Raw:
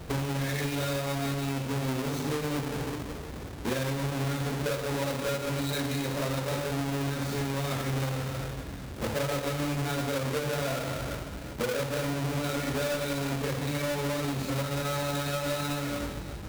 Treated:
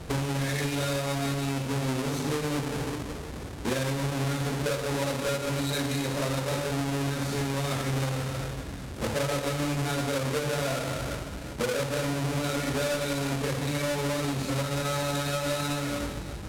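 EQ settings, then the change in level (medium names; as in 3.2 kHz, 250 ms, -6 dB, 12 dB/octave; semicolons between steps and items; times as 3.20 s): low-pass 11 kHz 12 dB/octave; treble shelf 8.2 kHz +5.5 dB; +1.5 dB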